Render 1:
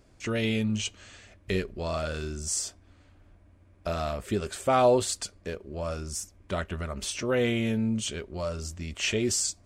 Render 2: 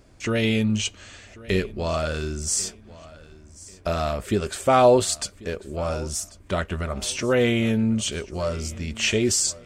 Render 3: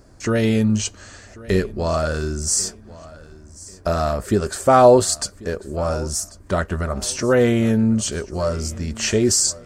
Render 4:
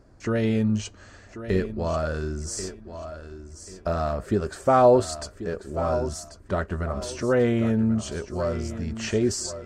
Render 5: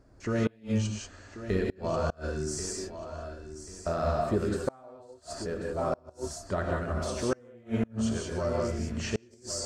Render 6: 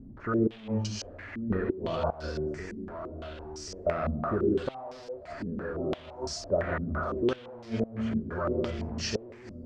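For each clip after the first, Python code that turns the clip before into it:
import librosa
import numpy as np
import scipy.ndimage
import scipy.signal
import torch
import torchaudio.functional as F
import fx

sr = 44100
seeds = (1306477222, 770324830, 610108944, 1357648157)

y1 = fx.echo_feedback(x, sr, ms=1091, feedback_pct=30, wet_db=-20.0)
y1 = F.gain(torch.from_numpy(y1), 5.5).numpy()
y2 = fx.band_shelf(y1, sr, hz=2800.0, db=-9.0, octaves=1.0)
y2 = F.gain(torch.from_numpy(y2), 4.5).numpy()
y3 = fx.lowpass(y2, sr, hz=2600.0, slope=6)
y3 = fx.echo_feedback(y3, sr, ms=1088, feedback_pct=29, wet_db=-12.0)
y3 = F.gain(torch.from_numpy(y3), -5.0).numpy()
y4 = fx.rev_gated(y3, sr, seeds[0], gate_ms=210, shape='rising', drr_db=-1.0)
y4 = fx.gate_flip(y4, sr, shuts_db=-12.0, range_db=-31)
y4 = F.gain(torch.from_numpy(y4), -5.0).numpy()
y5 = y4 + 0.5 * 10.0 ** (-41.5 / 20.0) * np.sign(y4)
y5 = fx.filter_held_lowpass(y5, sr, hz=5.9, low_hz=230.0, high_hz=5100.0)
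y5 = F.gain(torch.from_numpy(y5), -3.5).numpy()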